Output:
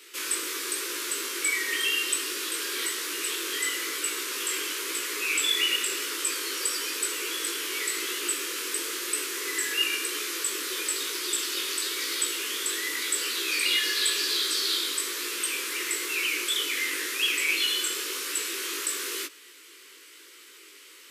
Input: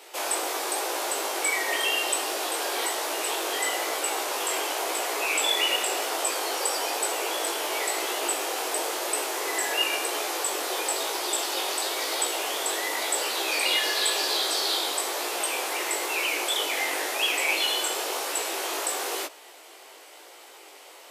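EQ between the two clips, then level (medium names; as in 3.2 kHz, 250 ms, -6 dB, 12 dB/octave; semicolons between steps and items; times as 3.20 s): Butterworth band-stop 720 Hz, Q 0.73; 0.0 dB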